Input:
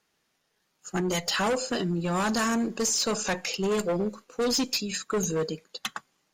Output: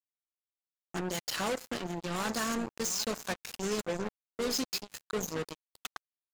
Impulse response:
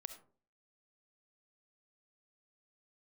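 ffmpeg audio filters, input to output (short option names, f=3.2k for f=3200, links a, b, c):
-af "aecho=1:1:753:0.133,acrusher=bits=3:mix=0:aa=0.5,volume=-6.5dB"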